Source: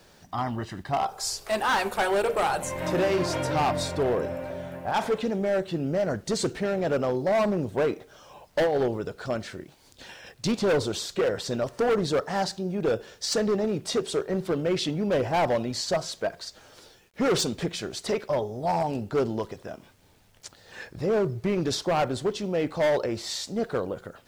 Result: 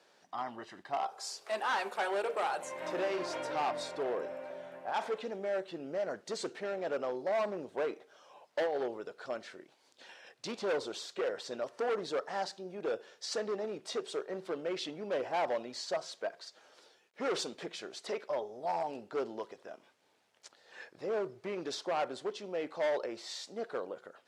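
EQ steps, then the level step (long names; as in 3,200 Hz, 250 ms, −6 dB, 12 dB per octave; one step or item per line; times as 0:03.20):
high-pass filter 390 Hz 12 dB per octave
low-pass filter 11,000 Hz 12 dB per octave
high-shelf EQ 6,500 Hz −8 dB
−7.5 dB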